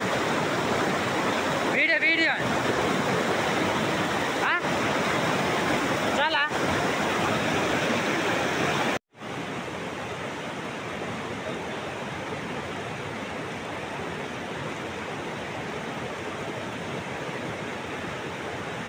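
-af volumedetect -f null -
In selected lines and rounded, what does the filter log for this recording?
mean_volume: -27.6 dB
max_volume: -10.9 dB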